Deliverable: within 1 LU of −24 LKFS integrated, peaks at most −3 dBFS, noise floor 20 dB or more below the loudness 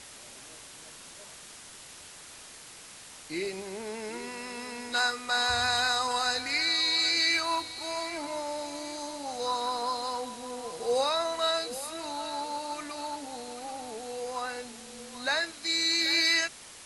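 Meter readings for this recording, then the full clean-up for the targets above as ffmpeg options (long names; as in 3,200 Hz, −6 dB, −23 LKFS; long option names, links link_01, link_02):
background noise floor −48 dBFS; target noise floor −50 dBFS; integrated loudness −29.5 LKFS; sample peak −14.5 dBFS; target loudness −24.0 LKFS
→ -af "afftdn=noise_reduction=6:noise_floor=-48"
-af "volume=5.5dB"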